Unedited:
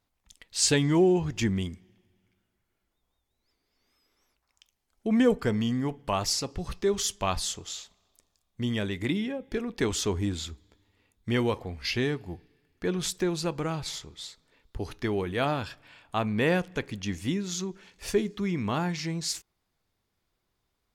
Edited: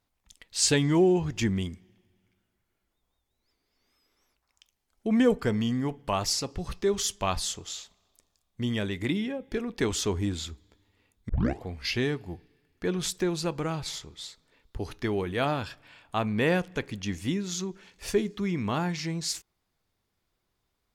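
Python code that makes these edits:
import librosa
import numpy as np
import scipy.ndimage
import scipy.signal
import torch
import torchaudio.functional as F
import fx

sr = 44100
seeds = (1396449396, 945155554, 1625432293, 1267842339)

y = fx.edit(x, sr, fx.tape_start(start_s=11.29, length_s=0.33), tone=tone)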